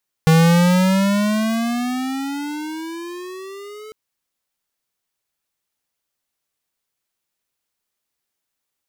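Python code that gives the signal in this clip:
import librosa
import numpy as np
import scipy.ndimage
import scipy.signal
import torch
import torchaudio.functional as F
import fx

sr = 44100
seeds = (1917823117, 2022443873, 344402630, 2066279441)

y = fx.riser_tone(sr, length_s=3.65, level_db=-11.0, wave='square', hz=159.0, rise_st=17.5, swell_db=-25.5)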